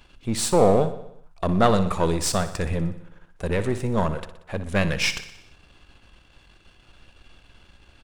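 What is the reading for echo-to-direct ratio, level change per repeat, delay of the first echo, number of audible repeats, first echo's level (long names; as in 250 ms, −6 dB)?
−11.0 dB, −4.5 dB, 61 ms, 5, −13.0 dB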